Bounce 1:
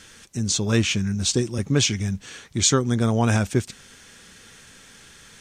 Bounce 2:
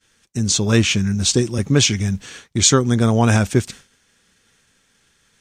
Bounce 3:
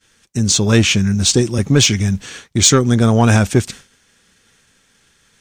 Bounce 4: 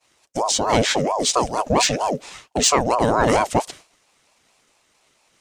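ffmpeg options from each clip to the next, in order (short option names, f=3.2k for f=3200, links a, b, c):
-af "agate=range=-33dB:threshold=-36dB:ratio=3:detection=peak,volume=5dB"
-af "acontrast=30,volume=-1dB"
-af "aeval=exprs='val(0)*sin(2*PI*600*n/s+600*0.45/4.4*sin(2*PI*4.4*n/s))':c=same,volume=-3dB"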